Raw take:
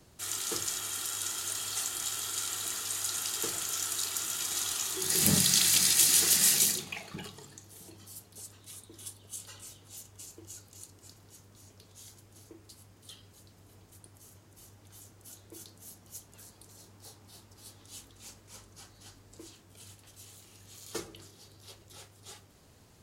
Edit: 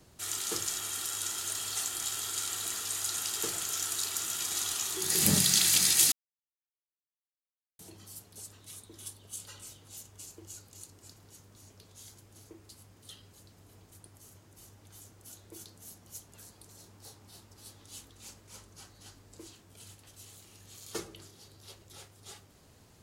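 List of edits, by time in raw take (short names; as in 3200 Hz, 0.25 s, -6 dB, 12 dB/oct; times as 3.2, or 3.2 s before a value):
6.12–7.79 mute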